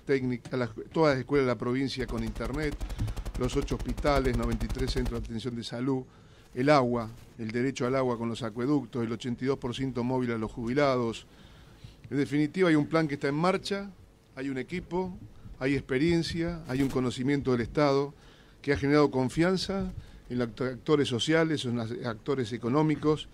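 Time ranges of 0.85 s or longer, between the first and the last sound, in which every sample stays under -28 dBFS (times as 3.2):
11.12–12.12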